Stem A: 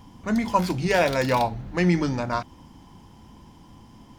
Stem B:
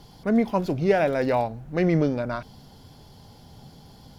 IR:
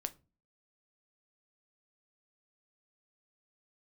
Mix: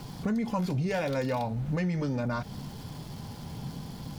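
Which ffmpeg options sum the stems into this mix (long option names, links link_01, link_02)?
-filter_complex "[0:a]volume=-2dB[link_01];[1:a]equalizer=frequency=160:width_type=o:width=1.5:gain=8,alimiter=limit=-18dB:level=0:latency=1,volume=0.5dB,asplit=2[link_02][link_03];[link_03]volume=-8.5dB[link_04];[2:a]atrim=start_sample=2205[link_05];[link_04][link_05]afir=irnorm=-1:irlink=0[link_06];[link_01][link_02][link_06]amix=inputs=3:normalize=0,aeval=exprs='val(0)*gte(abs(val(0)),0.00531)':channel_layout=same,acompressor=threshold=-27dB:ratio=6"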